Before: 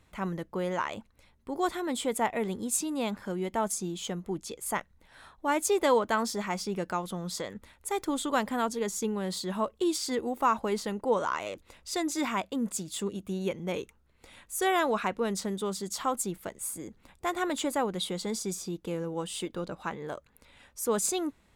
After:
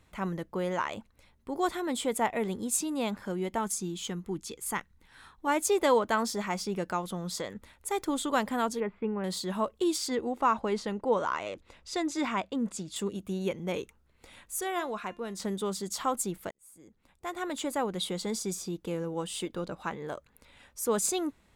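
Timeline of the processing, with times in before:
3.58–5.47 bell 620 Hz -12 dB 0.5 oct
8.8–9.24 elliptic low-pass 2500 Hz, stop band 60 dB
10.08–12.96 air absorption 61 m
14.61–15.4 resonator 350 Hz, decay 0.29 s
16.51–18.07 fade in

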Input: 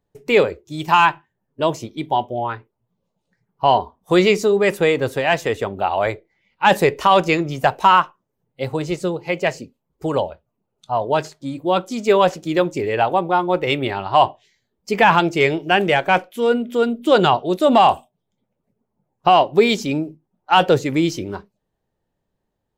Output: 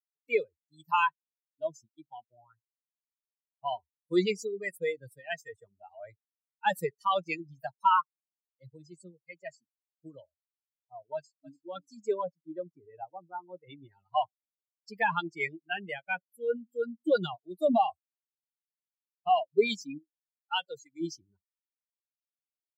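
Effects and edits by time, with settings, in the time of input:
11.15–11.59 echo throw 0.29 s, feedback 40%, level -6 dB
12.14–13.92 LPF 1600 Hz 6 dB/oct
19.98–21.01 low shelf 410 Hz -10.5 dB
whole clip: per-bin expansion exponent 3; HPF 170 Hz 24 dB/oct; gain -7 dB

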